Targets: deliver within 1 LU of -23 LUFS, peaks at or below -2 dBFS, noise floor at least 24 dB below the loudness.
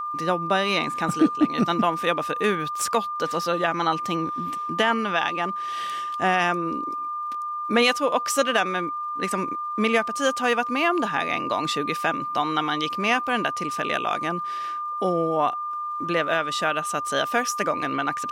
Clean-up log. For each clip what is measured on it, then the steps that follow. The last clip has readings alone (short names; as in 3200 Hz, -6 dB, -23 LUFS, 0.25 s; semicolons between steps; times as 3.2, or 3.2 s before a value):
ticks 42/s; steady tone 1200 Hz; tone level -27 dBFS; loudness -24.0 LUFS; peak -8.0 dBFS; loudness target -23.0 LUFS
-> de-click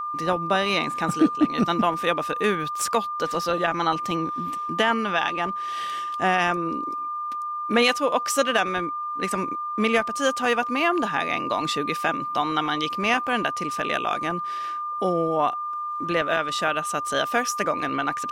ticks 0.16/s; steady tone 1200 Hz; tone level -27 dBFS
-> notch 1200 Hz, Q 30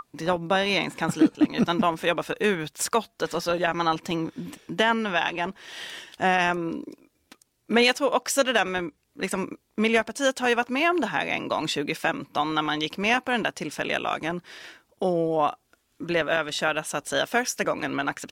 steady tone none; loudness -25.0 LUFS; peak -9.0 dBFS; loudness target -23.0 LUFS
-> gain +2 dB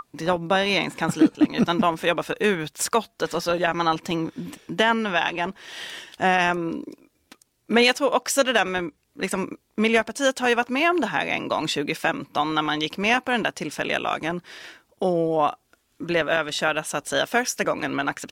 loudness -23.0 LUFS; peak -7.0 dBFS; noise floor -68 dBFS